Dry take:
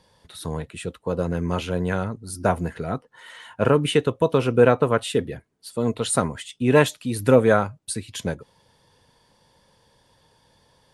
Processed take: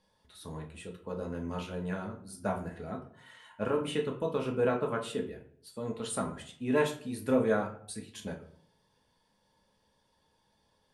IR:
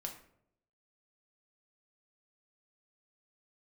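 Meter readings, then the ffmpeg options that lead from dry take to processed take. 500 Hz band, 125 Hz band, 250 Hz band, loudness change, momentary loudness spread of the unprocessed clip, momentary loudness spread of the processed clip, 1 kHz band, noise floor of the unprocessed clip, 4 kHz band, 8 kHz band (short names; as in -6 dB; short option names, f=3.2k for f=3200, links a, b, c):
-11.5 dB, -14.5 dB, -10.0 dB, -11.0 dB, 15 LU, 16 LU, -11.5 dB, -62 dBFS, -12.5 dB, -13.0 dB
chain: -filter_complex "[1:a]atrim=start_sample=2205,asetrate=52920,aresample=44100[a];[0:a][a]afir=irnorm=-1:irlink=0,volume=-8.5dB"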